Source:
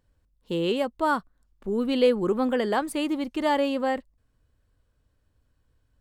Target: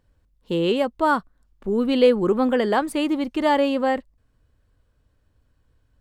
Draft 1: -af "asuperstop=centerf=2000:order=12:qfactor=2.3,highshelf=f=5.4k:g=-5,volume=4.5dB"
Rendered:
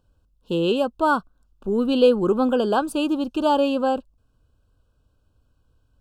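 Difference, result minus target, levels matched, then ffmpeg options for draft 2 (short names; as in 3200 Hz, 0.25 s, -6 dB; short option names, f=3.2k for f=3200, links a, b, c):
2000 Hz band -2.5 dB
-af "highshelf=f=5.4k:g=-5,volume=4.5dB"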